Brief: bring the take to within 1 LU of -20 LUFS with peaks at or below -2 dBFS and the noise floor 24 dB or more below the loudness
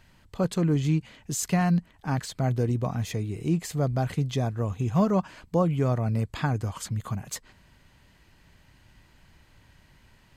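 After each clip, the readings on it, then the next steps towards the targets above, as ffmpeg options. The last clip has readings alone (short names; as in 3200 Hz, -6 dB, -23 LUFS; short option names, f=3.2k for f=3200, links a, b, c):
loudness -27.5 LUFS; peak -11.5 dBFS; loudness target -20.0 LUFS
-> -af "volume=7.5dB"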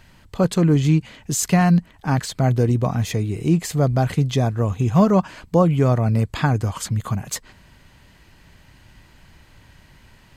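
loudness -20.0 LUFS; peak -4.0 dBFS; noise floor -52 dBFS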